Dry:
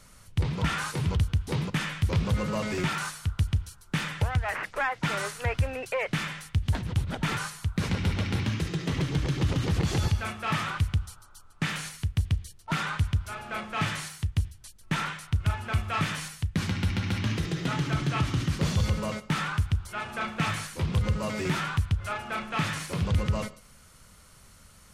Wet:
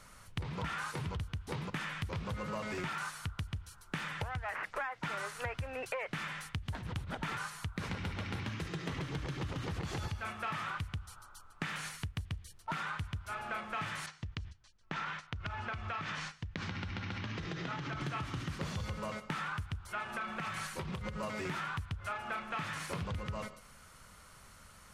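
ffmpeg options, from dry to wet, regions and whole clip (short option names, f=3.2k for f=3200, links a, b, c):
-filter_complex "[0:a]asettb=1/sr,asplit=3[a][b][c];[a]atrim=end=14.064[d];[b]atrim=start=14.06:end=18.01,asetpts=PTS-STARTPTS,afade=t=in:d=0.004:c=qsin,afade=t=out:st=3.946:d=0.004:c=qsin,lowpass=f=6.3k:w=0.5412,lowpass=f=6.3k:w=1.3066,agate=range=-10dB:threshold=-44dB:ratio=16:release=100:detection=peak,acompressor=threshold=-31dB:ratio=5:attack=3.2:release=140:knee=1:detection=peak[e];[c]atrim=start=18.006[f];[d][e]acrossfade=d=0.004:c1=hsin:c2=qsin[g];[g][f]acrossfade=d=0.004:c1=qsin:c2=hsin,asettb=1/sr,asplit=3[h][i][j];[h]atrim=end=20.034[k];[i]atrim=start=20.03:end=21.23,asetpts=PTS-STARTPTS,afade=t=in:d=0.004:c=qsin,afade=t=out:st=1.196:d=0.004:c=qsin,acompressor=threshold=-31dB:ratio=6:attack=3.2:release=140:knee=1:detection=peak,aecho=1:1:5.3:0.34,atrim=end_sample=52920[l];[j]atrim=start=21.226[m];[k][l]acrossfade=d=0.004:c1=hsin:c2=qsin[n];[n][m]acrossfade=d=0.004:c1=qsin:c2=hsin,equalizer=f=1.2k:w=0.57:g=7,acompressor=threshold=-31dB:ratio=6,volume=-4.5dB"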